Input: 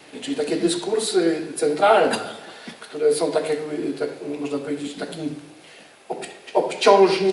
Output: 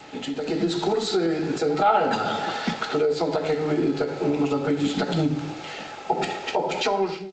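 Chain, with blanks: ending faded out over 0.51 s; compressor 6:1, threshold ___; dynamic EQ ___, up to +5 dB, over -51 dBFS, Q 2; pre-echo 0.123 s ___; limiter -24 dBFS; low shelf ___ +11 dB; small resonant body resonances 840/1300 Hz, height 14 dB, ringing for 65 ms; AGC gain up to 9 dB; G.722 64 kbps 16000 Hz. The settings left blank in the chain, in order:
-30 dBFS, 170 Hz, -24 dB, 100 Hz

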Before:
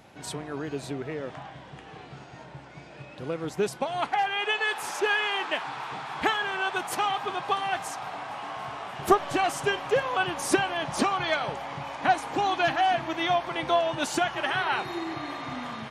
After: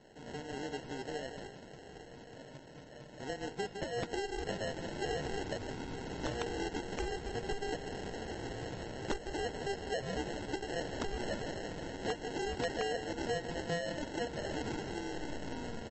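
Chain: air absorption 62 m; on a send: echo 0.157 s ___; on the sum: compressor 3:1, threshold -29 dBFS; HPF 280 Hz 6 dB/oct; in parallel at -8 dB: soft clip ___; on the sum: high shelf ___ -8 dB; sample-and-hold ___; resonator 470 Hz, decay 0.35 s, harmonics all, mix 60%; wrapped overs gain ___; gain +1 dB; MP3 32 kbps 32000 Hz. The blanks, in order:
-12.5 dB, -29.5 dBFS, 5400 Hz, 37×, 27 dB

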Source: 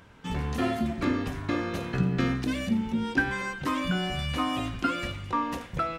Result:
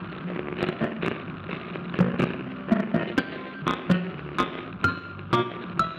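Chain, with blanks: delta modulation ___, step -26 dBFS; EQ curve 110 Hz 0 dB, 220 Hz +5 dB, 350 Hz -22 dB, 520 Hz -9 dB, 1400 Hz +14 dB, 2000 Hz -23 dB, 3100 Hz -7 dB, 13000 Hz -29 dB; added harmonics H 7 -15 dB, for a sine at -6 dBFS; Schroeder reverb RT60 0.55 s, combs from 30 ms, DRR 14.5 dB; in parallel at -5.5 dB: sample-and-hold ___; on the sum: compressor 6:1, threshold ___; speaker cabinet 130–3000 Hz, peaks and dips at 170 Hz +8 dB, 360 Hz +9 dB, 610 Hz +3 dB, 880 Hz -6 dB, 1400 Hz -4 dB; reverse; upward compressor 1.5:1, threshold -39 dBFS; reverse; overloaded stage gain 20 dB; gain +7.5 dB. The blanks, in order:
32 kbps, 34×, -24 dBFS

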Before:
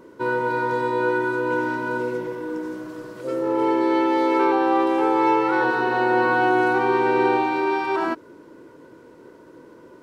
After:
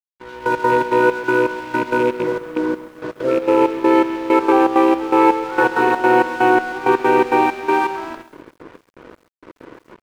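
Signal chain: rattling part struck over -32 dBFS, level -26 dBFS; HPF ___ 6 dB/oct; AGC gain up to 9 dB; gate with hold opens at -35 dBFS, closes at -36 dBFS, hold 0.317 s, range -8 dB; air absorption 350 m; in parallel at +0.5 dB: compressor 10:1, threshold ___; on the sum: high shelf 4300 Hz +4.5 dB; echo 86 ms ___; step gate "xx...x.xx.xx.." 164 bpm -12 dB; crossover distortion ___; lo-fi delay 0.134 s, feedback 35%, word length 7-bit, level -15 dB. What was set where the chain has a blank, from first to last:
160 Hz, -24 dBFS, -18 dB, -34 dBFS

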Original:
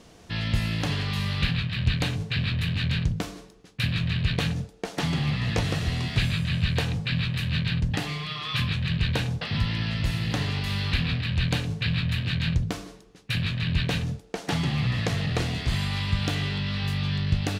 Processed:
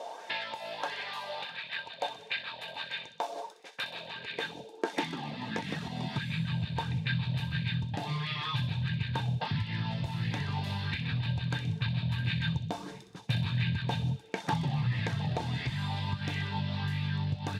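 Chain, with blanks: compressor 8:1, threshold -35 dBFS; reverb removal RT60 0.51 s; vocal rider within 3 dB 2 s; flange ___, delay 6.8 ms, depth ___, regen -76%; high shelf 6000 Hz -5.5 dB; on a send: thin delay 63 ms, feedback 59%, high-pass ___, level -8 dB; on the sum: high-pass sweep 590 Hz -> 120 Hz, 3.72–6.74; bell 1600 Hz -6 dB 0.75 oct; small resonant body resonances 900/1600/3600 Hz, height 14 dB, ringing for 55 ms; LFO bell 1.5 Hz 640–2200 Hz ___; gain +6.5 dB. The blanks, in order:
0.35 Hz, 7.2 ms, 2800 Hz, +11 dB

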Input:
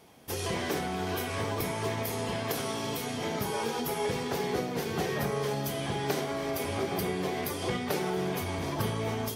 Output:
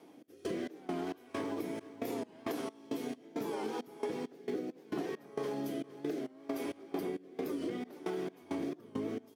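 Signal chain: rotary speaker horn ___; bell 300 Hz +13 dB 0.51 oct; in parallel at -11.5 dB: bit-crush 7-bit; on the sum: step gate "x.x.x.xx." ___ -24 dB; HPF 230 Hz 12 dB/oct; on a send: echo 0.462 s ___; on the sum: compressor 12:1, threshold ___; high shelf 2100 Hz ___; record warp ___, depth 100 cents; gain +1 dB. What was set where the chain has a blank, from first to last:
0.7 Hz, 67 bpm, -23.5 dB, -34 dBFS, -7 dB, 45 rpm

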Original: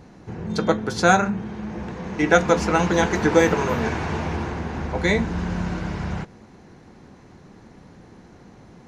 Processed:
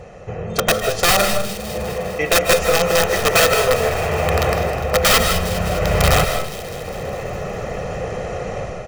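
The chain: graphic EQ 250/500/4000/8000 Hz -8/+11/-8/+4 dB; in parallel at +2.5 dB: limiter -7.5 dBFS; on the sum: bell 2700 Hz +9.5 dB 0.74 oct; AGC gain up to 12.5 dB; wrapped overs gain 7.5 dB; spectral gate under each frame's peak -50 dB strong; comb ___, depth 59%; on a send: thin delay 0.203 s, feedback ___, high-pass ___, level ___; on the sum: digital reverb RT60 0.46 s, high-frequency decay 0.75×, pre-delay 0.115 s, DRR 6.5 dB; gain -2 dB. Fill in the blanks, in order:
1.6 ms, 68%, 2700 Hz, -11.5 dB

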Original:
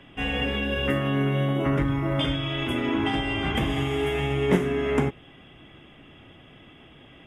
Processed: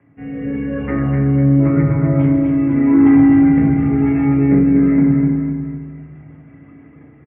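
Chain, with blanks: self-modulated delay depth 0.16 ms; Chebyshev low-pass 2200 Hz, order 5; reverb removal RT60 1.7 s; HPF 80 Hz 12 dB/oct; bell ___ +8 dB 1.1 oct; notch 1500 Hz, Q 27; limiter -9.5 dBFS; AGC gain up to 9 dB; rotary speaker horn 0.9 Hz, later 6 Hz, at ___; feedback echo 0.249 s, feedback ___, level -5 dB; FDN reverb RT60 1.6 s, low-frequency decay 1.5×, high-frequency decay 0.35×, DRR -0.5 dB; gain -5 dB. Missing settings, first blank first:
140 Hz, 4.47, 46%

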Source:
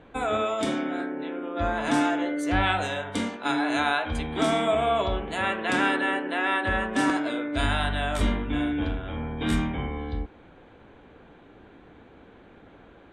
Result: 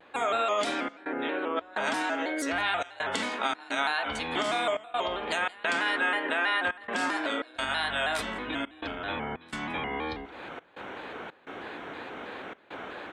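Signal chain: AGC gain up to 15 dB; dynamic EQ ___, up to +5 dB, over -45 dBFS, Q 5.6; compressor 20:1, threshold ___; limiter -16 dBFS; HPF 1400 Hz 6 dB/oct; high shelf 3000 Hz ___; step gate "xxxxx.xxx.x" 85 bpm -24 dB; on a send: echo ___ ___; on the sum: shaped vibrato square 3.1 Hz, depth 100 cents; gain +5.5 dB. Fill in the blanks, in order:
4700 Hz, -22 dBFS, -6.5 dB, 0.166 s, -21.5 dB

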